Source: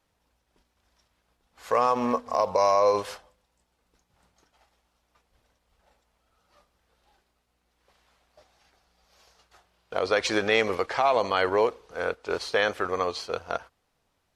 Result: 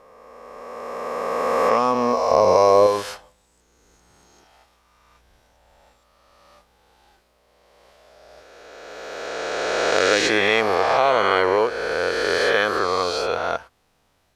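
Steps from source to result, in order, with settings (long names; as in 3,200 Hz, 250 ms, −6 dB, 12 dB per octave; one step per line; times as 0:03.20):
peak hold with a rise ahead of every peak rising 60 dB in 2.68 s
0:02.31–0:02.87: low-shelf EQ 500 Hz +9 dB
in parallel at −2 dB: downward compressor, threshold −31 dBFS, peak gain reduction 18 dB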